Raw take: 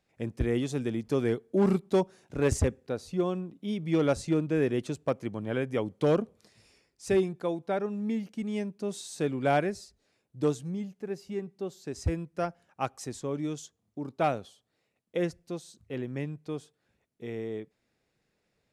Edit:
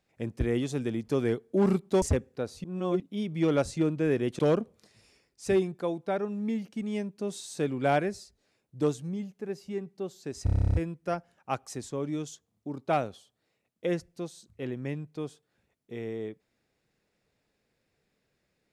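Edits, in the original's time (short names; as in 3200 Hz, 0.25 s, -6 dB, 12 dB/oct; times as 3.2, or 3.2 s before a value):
2.02–2.53 cut
3.15–3.51 reverse
4.9–6 cut
12.05 stutter 0.03 s, 11 plays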